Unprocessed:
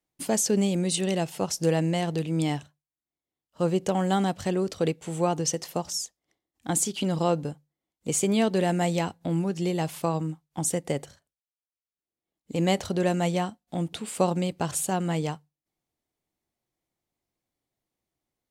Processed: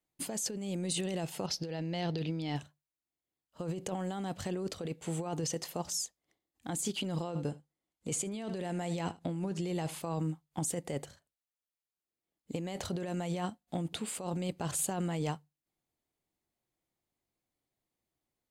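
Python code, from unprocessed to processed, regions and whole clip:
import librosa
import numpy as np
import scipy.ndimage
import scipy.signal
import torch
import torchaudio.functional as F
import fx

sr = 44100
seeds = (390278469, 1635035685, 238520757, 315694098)

y = fx.chain(x, sr, fx.high_shelf_res(hz=6200.0, db=-9.5, q=3.0),
    fx.notch(hz=1100.0, q=9.2), at=(1.46, 2.56))
y = fx.chain(y, sr, fx.lowpass(hz=12000.0, slope=24),
    fx.echo_single(ms=77, db=-20.5), at=(7.27, 10.0))
y = fx.notch(y, sr, hz=5600.0, q=14.0)
y = fx.over_compress(y, sr, threshold_db=-29.0, ratio=-1.0)
y = y * librosa.db_to_amplitude(-6.0)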